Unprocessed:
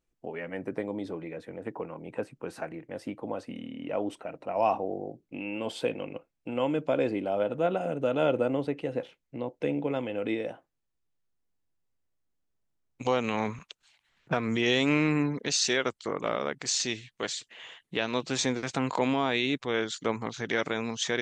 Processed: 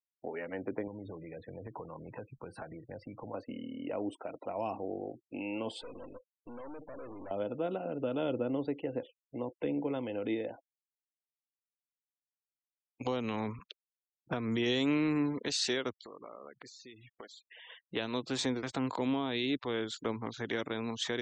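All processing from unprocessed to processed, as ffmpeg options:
-filter_complex "[0:a]asettb=1/sr,asplit=3[a][b][c];[a]atrim=end=0.874[d];[b]atrim=start=0.87:end=3.34,asetpts=PTS-STARTPTS,afade=t=in:d=0.004:c=qsin,afade=t=out:st=2.466:d=0.004:c=qsin,lowshelf=f=200:t=q:w=1.5:g=8.5,acompressor=threshold=-38dB:ratio=6:attack=3.2:release=140:knee=1:detection=peak[e];[c]atrim=start=3.336[f];[d][e]acrossfade=d=0.004:c1=hsin:c2=qsin[g];[g][f]acrossfade=d=0.004:c1=qsin:c2=hsin,asettb=1/sr,asplit=3[h][i][j];[h]atrim=end=5.814[k];[i]atrim=start=5.81:end=7.31,asetpts=PTS-STARTPTS,afade=t=in:d=0.004:c=qsin,afade=t=out:st=1.496:d=0.004:c=qsin,acompressor=threshold=-30dB:ratio=8:attack=3.2:release=140:knee=1:detection=peak,aeval=exprs='(tanh(141*val(0)+0.75)-tanh(0.75))/141':c=same[l];[j]atrim=start=7.306[m];[k][l]acrossfade=d=0.004:c1=hsin:c2=qsin[n];[n][m]acrossfade=d=0.004:c1=qsin:c2=hsin,asettb=1/sr,asplit=3[o][p][q];[o]atrim=end=16.034[r];[p]atrim=start=16.03:end=17.7,asetpts=PTS-STARTPTS,afade=t=in:d=0.004:c=qsin,afade=t=out:st=1.666:d=0.004:c=qsin,highpass=72,acompressor=threshold=-45dB:ratio=6:attack=3.2:release=140:knee=1:detection=peak[s];[q]atrim=start=17.696[t];[r][s]acrossfade=d=0.004:c1=hsin:c2=qsin[u];[u][t]acrossfade=d=0.004:c1=qsin:c2=hsin,afftfilt=real='re*gte(hypot(re,im),0.00501)':imag='im*gte(hypot(re,im),0.00501)':win_size=1024:overlap=0.75,equalizer=f=160:t=o:w=0.67:g=-9,equalizer=f=1k:t=o:w=0.67:g=3,equalizer=f=2.5k:t=o:w=0.67:g=-4,equalizer=f=6.3k:t=o:w=0.67:g=-10,acrossover=split=360|3000[v][w][x];[w]acompressor=threshold=-39dB:ratio=4[y];[v][y][x]amix=inputs=3:normalize=0"

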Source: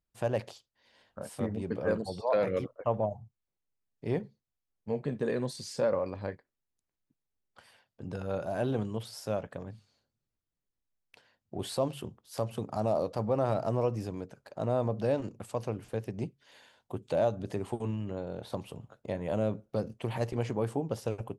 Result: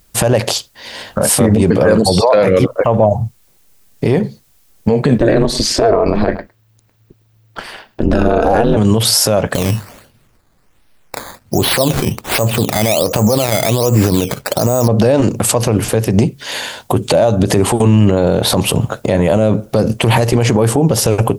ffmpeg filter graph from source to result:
-filter_complex "[0:a]asettb=1/sr,asplit=3[a][b][c];[a]atrim=end=5.184[d];[b]atrim=start=5.18:end=8.77,asetpts=PTS-STARTPTS,afade=t=in:d=0.004:c=qsin,afade=t=out:st=3.586:d=0.004:c=qsin,equalizer=f=10k:w=0.54:g=-14,aeval=exprs='val(0)*sin(2*PI*110*n/s)':c=same,aecho=1:1:107:0.075,atrim=end_sample=158319[e];[c]atrim=start=8.766[f];[d][e]acrossfade=d=0.004:c1=hsin:c2=qsin[g];[g][f]acrossfade=d=0.004:c1=qsin:c2=hsin,asettb=1/sr,asplit=3[h][i][j];[h]atrim=end=9.544[k];[i]atrim=start=9.54:end=14.88,asetpts=PTS-STARTPTS,afade=t=in:d=0.004:c=qsin,afade=t=out:st=5.336:d=0.004:c=qsin,lowpass=f=10k:w=0.5412,lowpass=f=10k:w=1.3066,acrusher=samples=11:mix=1:aa=0.000001:lfo=1:lforange=11:lforate=1.3[l];[j]atrim=start=14.876[m];[k][l]acrossfade=d=0.004:c1=hsin:c2=qsin[n];[n][m]acrossfade=d=0.004:c1=qsin:c2=hsin,highshelf=f=5.4k:g=8,acompressor=threshold=-36dB:ratio=4,alimiter=level_in=34.5dB:limit=-1dB:release=50:level=0:latency=1,volume=-1dB"

